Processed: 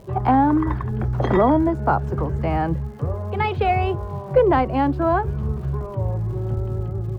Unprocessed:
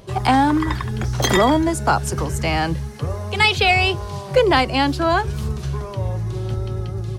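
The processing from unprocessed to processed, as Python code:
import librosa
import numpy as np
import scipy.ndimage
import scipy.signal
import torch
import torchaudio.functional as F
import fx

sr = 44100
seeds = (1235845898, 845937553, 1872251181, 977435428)

y = scipy.signal.sosfilt(scipy.signal.butter(2, 1100.0, 'lowpass', fs=sr, output='sos'), x)
y = fx.dmg_crackle(y, sr, seeds[0], per_s=200.0, level_db=-44.0)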